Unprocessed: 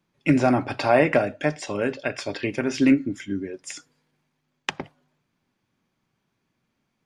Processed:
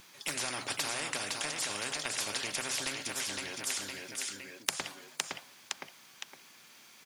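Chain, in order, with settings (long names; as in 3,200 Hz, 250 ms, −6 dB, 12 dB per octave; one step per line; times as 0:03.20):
high-pass filter 1,300 Hz 6 dB per octave
high-shelf EQ 3,400 Hz +10 dB
downward compressor 2.5 to 1, threshold −29 dBFS, peak gain reduction 8 dB
on a send: repeating echo 512 ms, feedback 28%, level −10 dB
on the sum: every bin compressed towards the loudest bin 4 to 1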